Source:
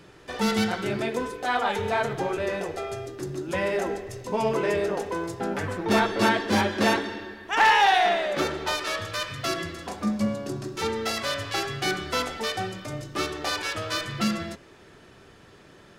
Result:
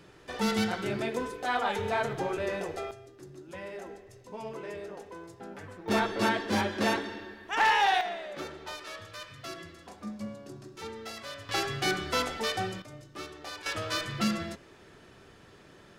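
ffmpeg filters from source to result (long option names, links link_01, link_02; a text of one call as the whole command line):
ffmpeg -i in.wav -af "asetnsamples=nb_out_samples=441:pad=0,asendcmd='2.91 volume volume -15dB;5.88 volume volume -5.5dB;8.01 volume volume -13dB;11.49 volume volume -2dB;12.82 volume volume -13dB;13.66 volume volume -3dB',volume=-4dB" out.wav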